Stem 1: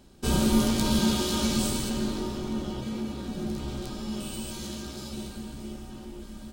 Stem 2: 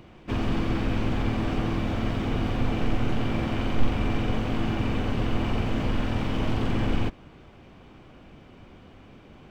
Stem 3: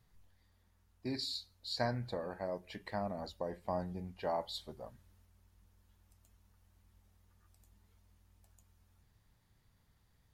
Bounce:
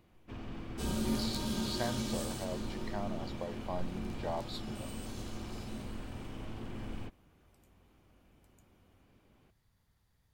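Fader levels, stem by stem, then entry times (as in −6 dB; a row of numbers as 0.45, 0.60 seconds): −11.5, −17.5, −2.0 decibels; 0.55, 0.00, 0.00 seconds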